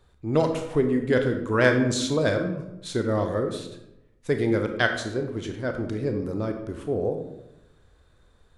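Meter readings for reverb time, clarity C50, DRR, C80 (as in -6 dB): 0.90 s, 7.5 dB, 5.0 dB, 10.0 dB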